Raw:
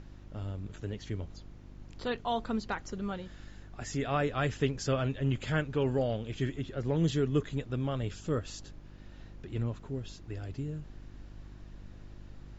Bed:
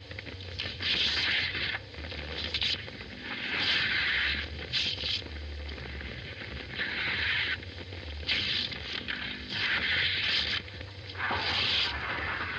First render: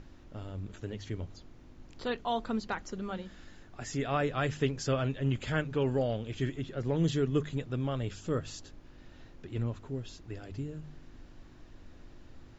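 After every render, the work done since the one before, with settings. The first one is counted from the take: de-hum 50 Hz, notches 4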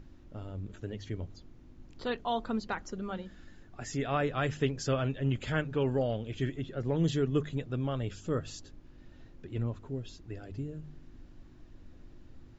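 denoiser 6 dB, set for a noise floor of -53 dBFS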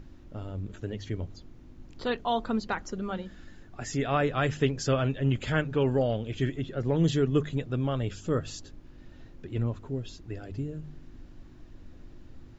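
gain +4 dB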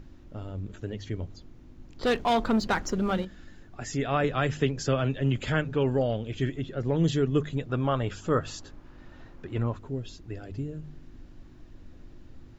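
2.03–3.25 sample leveller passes 2; 4.24–5.69 three-band squash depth 40%; 7.69–9.77 bell 1100 Hz +9 dB 1.8 oct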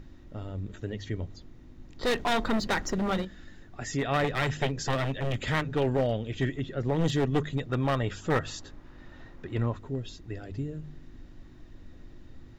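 one-sided fold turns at -24 dBFS; small resonant body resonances 1900/3700 Hz, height 8 dB, ringing for 25 ms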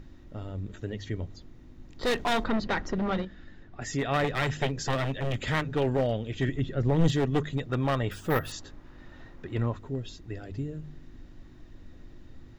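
2.44–3.82 air absorption 150 m; 6.48–7.12 low shelf 170 Hz +8 dB; 8.11–8.52 careless resampling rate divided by 3×, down filtered, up hold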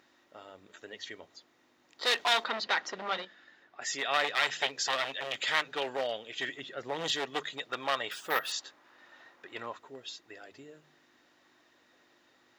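HPF 710 Hz 12 dB/oct; dynamic EQ 3900 Hz, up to +7 dB, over -50 dBFS, Q 0.86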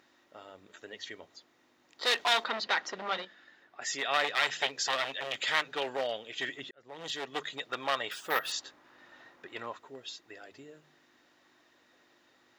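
6.71–7.51 fade in; 8.45–9.48 low shelf 280 Hz +8.5 dB

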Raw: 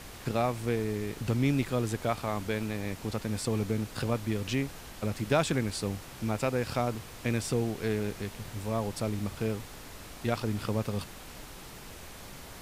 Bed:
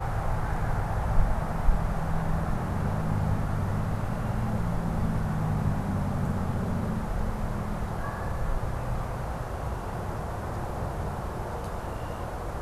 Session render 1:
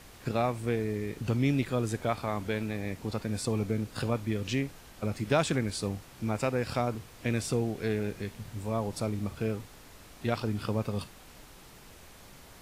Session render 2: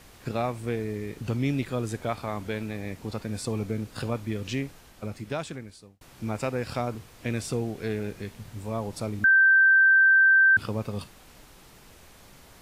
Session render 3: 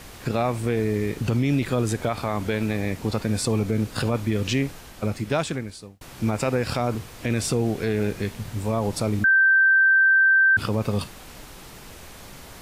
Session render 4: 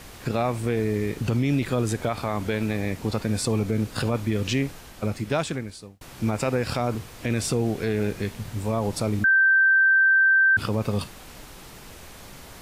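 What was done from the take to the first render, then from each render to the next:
noise print and reduce 6 dB
4.69–6.01 fade out; 9.24–10.57 bleep 1560 Hz -14.5 dBFS
in parallel at +2 dB: negative-ratio compressor -27 dBFS; on the sum: limiter -13.5 dBFS, peak gain reduction 7 dB
gain -1 dB

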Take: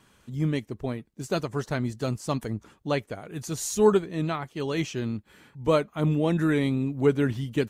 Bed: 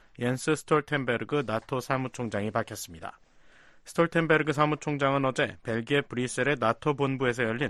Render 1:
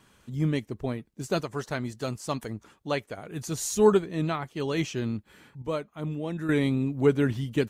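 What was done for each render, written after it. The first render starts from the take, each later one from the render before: 1.41–3.18 low shelf 370 Hz -6 dB; 5.62–6.49 gain -8.5 dB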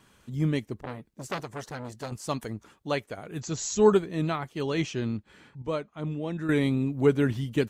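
0.79–2.12 core saturation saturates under 2000 Hz; 3.4–3.93 brick-wall FIR low-pass 7900 Hz; 4.63–6.49 LPF 7500 Hz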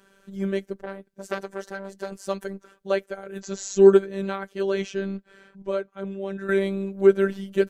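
small resonant body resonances 480/1500 Hz, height 12 dB, ringing for 20 ms; robotiser 195 Hz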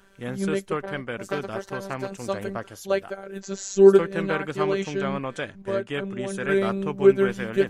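add bed -4.5 dB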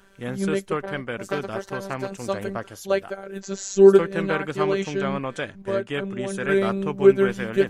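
gain +1.5 dB; limiter -2 dBFS, peak gain reduction 1 dB

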